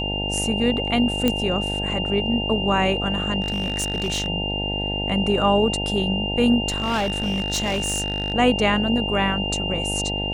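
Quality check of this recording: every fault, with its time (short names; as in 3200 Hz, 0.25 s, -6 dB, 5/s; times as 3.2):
buzz 50 Hz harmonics 18 -28 dBFS
tone 2800 Hz -26 dBFS
1.28 pop -6 dBFS
3.41–4.28 clipped -19.5 dBFS
6.68–8.34 clipped -19 dBFS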